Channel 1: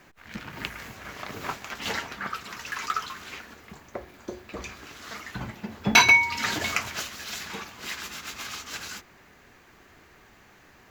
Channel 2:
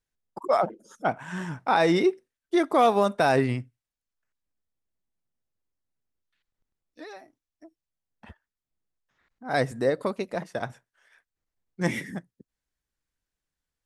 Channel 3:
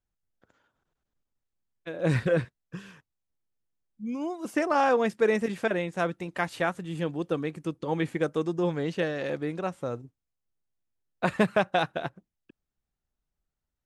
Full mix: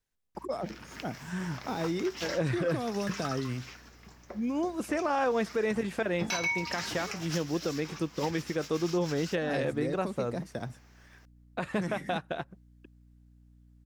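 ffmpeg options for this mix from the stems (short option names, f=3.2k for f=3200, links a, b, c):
-filter_complex "[0:a]equalizer=f=5.4k:t=o:w=0.35:g=11.5,adelay=350,volume=-9dB[a];[1:a]acrossover=split=350|4000[b][c][d];[b]acompressor=threshold=-33dB:ratio=4[e];[c]acompressor=threshold=-42dB:ratio=4[f];[d]acompressor=threshold=-54dB:ratio=4[g];[e][f][g]amix=inputs=3:normalize=0,volume=1dB[h];[2:a]alimiter=limit=-18.5dB:level=0:latency=1:release=145,aeval=exprs='val(0)+0.00126*(sin(2*PI*60*n/s)+sin(2*PI*2*60*n/s)/2+sin(2*PI*3*60*n/s)/3+sin(2*PI*4*60*n/s)/4+sin(2*PI*5*60*n/s)/5)':c=same,adelay=350,volume=1.5dB[i];[a][h][i]amix=inputs=3:normalize=0,alimiter=limit=-20.5dB:level=0:latency=1:release=161"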